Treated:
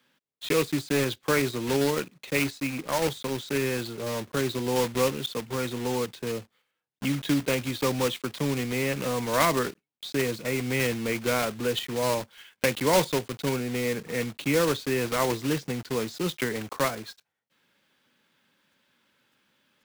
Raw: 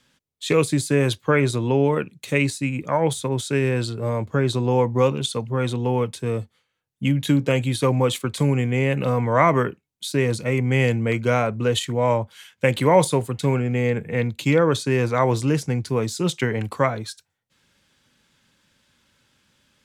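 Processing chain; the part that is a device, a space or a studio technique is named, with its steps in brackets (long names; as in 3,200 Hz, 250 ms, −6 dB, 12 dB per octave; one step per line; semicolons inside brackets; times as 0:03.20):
early digital voice recorder (band-pass filter 210–3,700 Hz; one scale factor per block 3 bits)
dynamic equaliser 740 Hz, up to −4 dB, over −31 dBFS, Q 0.75
level −3 dB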